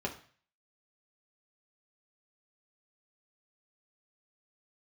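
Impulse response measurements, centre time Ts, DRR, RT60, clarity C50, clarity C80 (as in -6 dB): 13 ms, -0.5 dB, 0.45 s, 12.0 dB, 16.0 dB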